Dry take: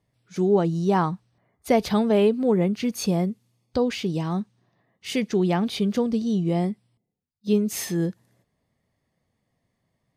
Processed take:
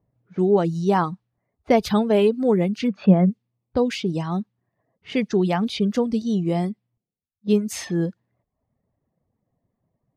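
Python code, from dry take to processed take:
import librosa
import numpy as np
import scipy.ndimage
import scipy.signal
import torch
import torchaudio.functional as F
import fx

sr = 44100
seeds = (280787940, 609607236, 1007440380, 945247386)

y = fx.dereverb_blind(x, sr, rt60_s=0.65)
y = fx.env_lowpass(y, sr, base_hz=900.0, full_db=-21.0)
y = fx.cabinet(y, sr, low_hz=130.0, low_slope=12, high_hz=2800.0, hz=(190.0, 590.0, 1500.0), db=(10, 8, 5), at=(2.87, 3.29), fade=0.02)
y = y * librosa.db_to_amplitude(2.5)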